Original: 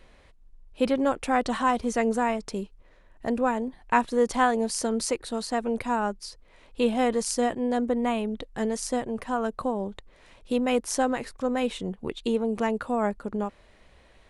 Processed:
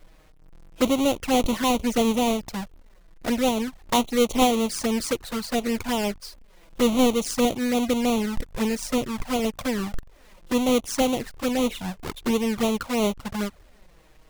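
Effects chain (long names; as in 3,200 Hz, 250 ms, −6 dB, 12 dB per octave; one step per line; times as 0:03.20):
each half-wave held at its own peak
flanger swept by the level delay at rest 7.2 ms, full sweep at −18.5 dBFS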